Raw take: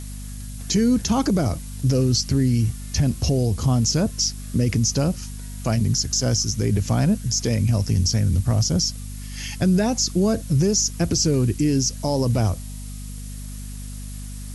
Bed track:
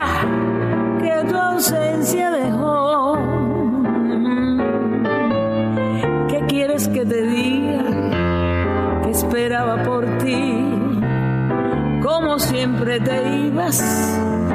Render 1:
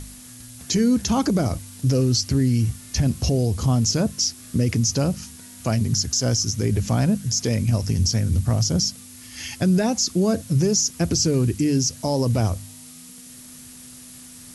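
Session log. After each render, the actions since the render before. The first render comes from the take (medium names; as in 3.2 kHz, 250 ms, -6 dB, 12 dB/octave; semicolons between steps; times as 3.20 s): de-hum 50 Hz, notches 4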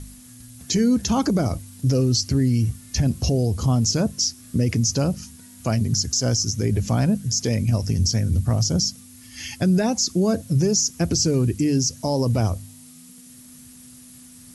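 noise reduction 6 dB, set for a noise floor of -43 dBFS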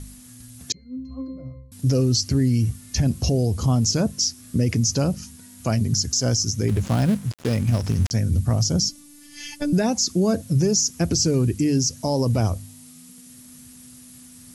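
0.72–1.72 s: pitch-class resonator C, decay 0.64 s; 6.68–8.11 s: dead-time distortion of 0.19 ms; 8.89–9.73 s: robot voice 292 Hz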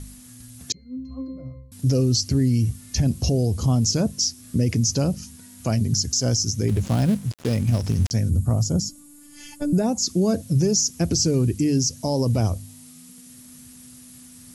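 8.30–10.02 s: time-frequency box 1.5–6.5 kHz -8 dB; dynamic bell 1.4 kHz, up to -4 dB, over -44 dBFS, Q 0.82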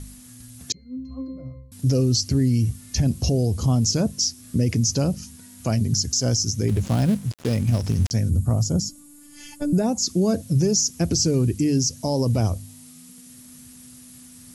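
no audible change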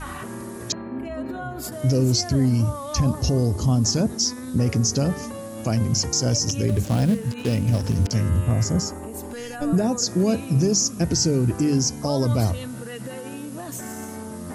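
add bed track -16 dB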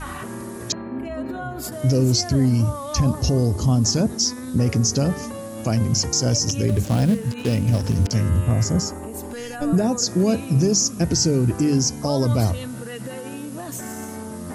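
trim +1.5 dB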